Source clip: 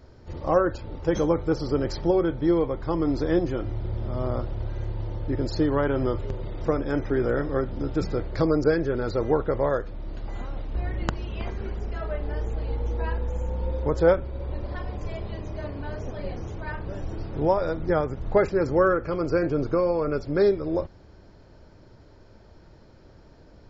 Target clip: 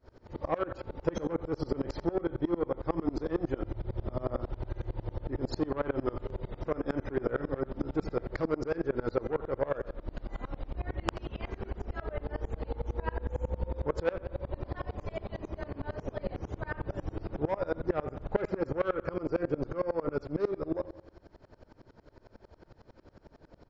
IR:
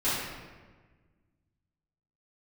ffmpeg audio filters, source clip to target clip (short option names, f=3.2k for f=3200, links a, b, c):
-filter_complex "[0:a]highshelf=f=2.6k:g=-8.5,asoftclip=type=tanh:threshold=-17dB,lowshelf=f=260:g=-6.5,asplit=2[a][b];[b]adelay=82,lowpass=f=4.9k:p=1,volume=-15dB,asplit=2[c][d];[d]adelay=82,lowpass=f=4.9k:p=1,volume=0.53,asplit=2[e][f];[f]adelay=82,lowpass=f=4.9k:p=1,volume=0.53,asplit=2[g][h];[h]adelay=82,lowpass=f=4.9k:p=1,volume=0.53,asplit=2[i][j];[j]adelay=82,lowpass=f=4.9k:p=1,volume=0.53[k];[a][c][e][g][i][k]amix=inputs=6:normalize=0,acompressor=threshold=-28dB:ratio=4,aeval=exprs='val(0)*pow(10,-27*if(lt(mod(-11*n/s,1),2*abs(-11)/1000),1-mod(-11*n/s,1)/(2*abs(-11)/1000),(mod(-11*n/s,1)-2*abs(-11)/1000)/(1-2*abs(-11)/1000))/20)':c=same,volume=7dB"